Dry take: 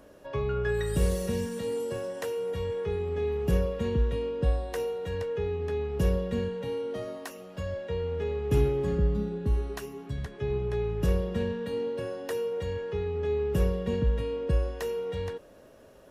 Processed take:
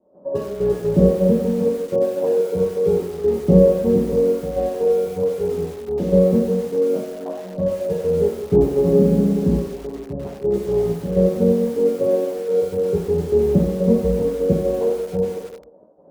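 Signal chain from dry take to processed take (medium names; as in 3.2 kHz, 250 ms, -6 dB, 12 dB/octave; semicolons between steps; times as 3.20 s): 5.26–5.95 s: compression 10:1, threshold -28 dBFS, peak gain reduction 3 dB; 12.92–13.76 s: bass shelf 82 Hz +11.5 dB; crossover distortion -53 dBFS; four-pole ladder low-pass 810 Hz, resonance 35%; trance gate ".xx..x.xx.x" 125 bpm -12 dB; 8.86–9.54 s: flutter echo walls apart 11.2 m, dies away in 1 s; reverberation RT60 0.85 s, pre-delay 3 ms, DRR -9 dB; bit-crushed delay 95 ms, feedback 55%, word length 6-bit, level -11 dB; trim +3.5 dB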